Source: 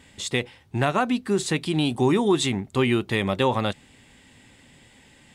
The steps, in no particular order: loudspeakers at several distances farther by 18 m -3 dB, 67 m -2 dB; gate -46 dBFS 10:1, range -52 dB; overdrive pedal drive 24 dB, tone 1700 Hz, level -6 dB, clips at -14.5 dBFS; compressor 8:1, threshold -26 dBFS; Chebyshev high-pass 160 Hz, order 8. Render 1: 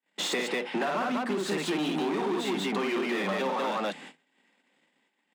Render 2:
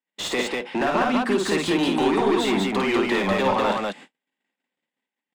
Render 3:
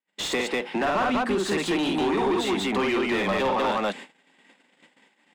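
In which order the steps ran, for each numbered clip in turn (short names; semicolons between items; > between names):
gate > loudspeakers at several distances > overdrive pedal > Chebyshev high-pass > compressor; Chebyshev high-pass > compressor > gate > overdrive pedal > loudspeakers at several distances; loudspeakers at several distances > compressor > Chebyshev high-pass > gate > overdrive pedal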